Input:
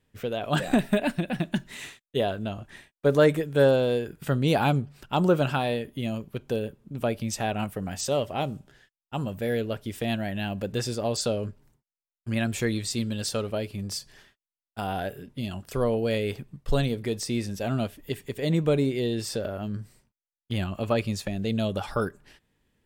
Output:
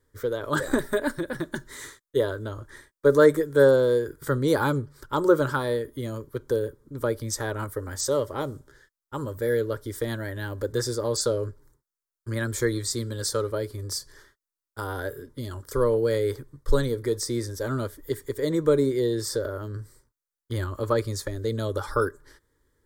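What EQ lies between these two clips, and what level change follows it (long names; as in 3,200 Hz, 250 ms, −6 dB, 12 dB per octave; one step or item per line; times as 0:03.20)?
phaser with its sweep stopped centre 720 Hz, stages 6
+5.0 dB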